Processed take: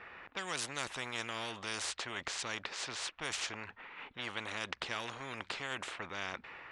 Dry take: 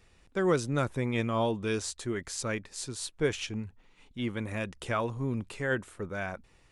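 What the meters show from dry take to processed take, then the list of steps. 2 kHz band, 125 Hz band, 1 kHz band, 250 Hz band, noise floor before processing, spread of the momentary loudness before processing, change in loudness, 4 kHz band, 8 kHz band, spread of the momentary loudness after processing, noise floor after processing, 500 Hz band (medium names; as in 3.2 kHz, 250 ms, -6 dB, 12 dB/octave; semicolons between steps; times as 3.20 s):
-2.5 dB, -18.5 dB, -5.0 dB, -17.0 dB, -63 dBFS, 10 LU, -7.0 dB, +2.0 dB, -2.5 dB, 6 LU, -63 dBFS, -15.0 dB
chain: level-controlled noise filter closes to 1.8 kHz, open at -25.5 dBFS; band-pass filter 1.7 kHz, Q 1.2; spectrum-flattening compressor 4:1; trim +2.5 dB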